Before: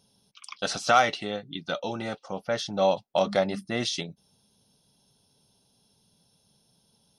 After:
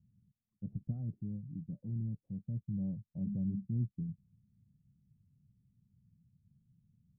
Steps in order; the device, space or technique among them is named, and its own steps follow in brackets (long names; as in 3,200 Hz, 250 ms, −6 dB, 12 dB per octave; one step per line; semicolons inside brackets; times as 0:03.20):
the neighbour's flat through the wall (low-pass filter 180 Hz 24 dB per octave; parametric band 100 Hz +5 dB 0.96 octaves)
level +2 dB